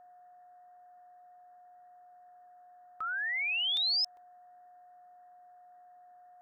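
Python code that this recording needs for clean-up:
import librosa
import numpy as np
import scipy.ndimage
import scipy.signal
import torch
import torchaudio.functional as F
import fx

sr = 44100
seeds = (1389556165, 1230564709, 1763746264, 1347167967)

y = fx.notch(x, sr, hz=720.0, q=30.0)
y = fx.fix_interpolate(y, sr, at_s=(3.77, 4.17), length_ms=1.9)
y = fx.noise_reduce(y, sr, print_start_s=4.79, print_end_s=5.29, reduce_db=23.0)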